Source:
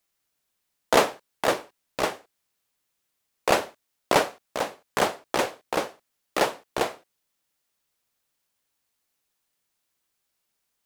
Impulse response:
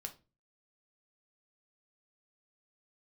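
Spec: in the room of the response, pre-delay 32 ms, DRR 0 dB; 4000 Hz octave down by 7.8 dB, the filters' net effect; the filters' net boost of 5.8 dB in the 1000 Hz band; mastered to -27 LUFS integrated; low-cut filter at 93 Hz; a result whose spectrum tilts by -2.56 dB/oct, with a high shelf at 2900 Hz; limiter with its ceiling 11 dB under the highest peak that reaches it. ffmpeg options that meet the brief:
-filter_complex "[0:a]highpass=93,equalizer=f=1k:t=o:g=8.5,highshelf=f=2.9k:g=-7.5,equalizer=f=4k:t=o:g=-5,alimiter=limit=-13dB:level=0:latency=1,asplit=2[a][b];[1:a]atrim=start_sample=2205,adelay=32[c];[b][c]afir=irnorm=-1:irlink=0,volume=3dB[d];[a][d]amix=inputs=2:normalize=0,volume=-0.5dB"

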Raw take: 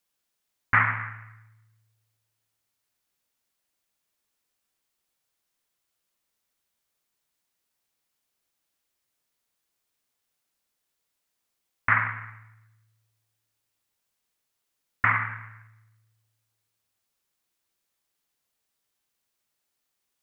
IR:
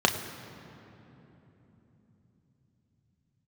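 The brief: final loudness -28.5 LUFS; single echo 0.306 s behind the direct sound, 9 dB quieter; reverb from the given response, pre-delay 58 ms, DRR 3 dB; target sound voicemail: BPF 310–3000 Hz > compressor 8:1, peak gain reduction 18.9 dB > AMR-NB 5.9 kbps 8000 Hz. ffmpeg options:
-filter_complex "[0:a]aecho=1:1:306:0.355,asplit=2[a][b];[1:a]atrim=start_sample=2205,adelay=58[c];[b][c]afir=irnorm=-1:irlink=0,volume=-18dB[d];[a][d]amix=inputs=2:normalize=0,highpass=310,lowpass=3k,acompressor=threshold=-35dB:ratio=8,volume=16dB" -ar 8000 -c:a libopencore_amrnb -b:a 5900

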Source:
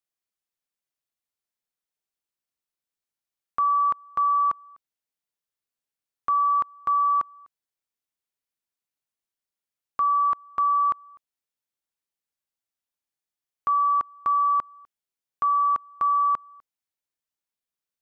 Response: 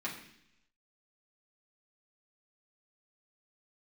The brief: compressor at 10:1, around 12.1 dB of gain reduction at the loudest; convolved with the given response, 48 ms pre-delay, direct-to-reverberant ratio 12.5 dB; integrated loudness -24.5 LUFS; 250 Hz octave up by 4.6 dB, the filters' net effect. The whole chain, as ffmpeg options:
-filter_complex "[0:a]equalizer=f=250:t=o:g=6,acompressor=threshold=-32dB:ratio=10,asplit=2[a][b];[1:a]atrim=start_sample=2205,adelay=48[c];[b][c]afir=irnorm=-1:irlink=0,volume=-16dB[d];[a][d]amix=inputs=2:normalize=0,volume=11.5dB"

